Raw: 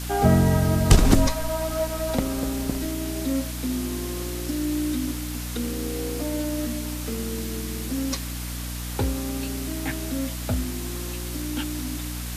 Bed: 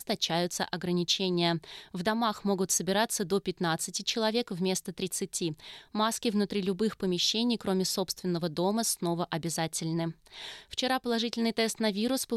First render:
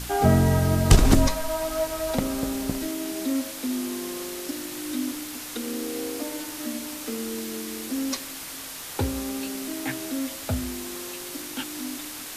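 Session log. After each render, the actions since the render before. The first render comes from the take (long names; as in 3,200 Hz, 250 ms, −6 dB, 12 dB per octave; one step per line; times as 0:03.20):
hum removal 60 Hz, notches 10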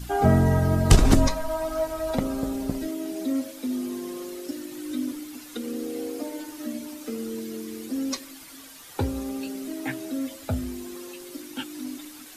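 broadband denoise 11 dB, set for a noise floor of −37 dBFS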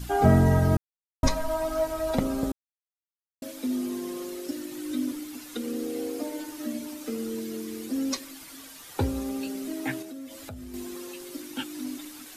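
0:00.77–0:01.23: silence
0:02.52–0:03.42: silence
0:10.02–0:10.74: downward compressor 5 to 1, threshold −38 dBFS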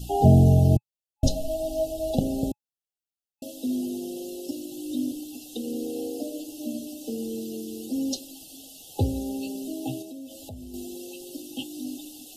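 brick-wall band-stop 840–2,600 Hz
dynamic equaliser 120 Hz, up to +6 dB, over −40 dBFS, Q 1.3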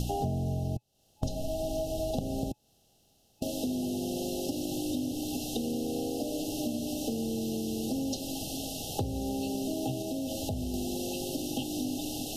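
compressor on every frequency bin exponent 0.6
downward compressor 8 to 1, threshold −29 dBFS, peak gain reduction 18 dB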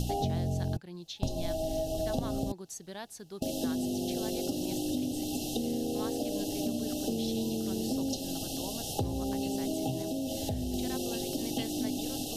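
mix in bed −15.5 dB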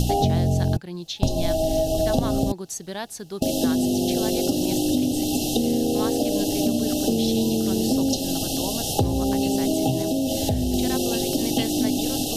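level +10.5 dB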